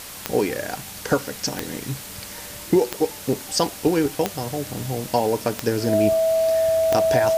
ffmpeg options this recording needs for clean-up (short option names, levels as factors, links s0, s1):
-af "adeclick=t=4,bandreject=f=650:w=30,afwtdn=0.016"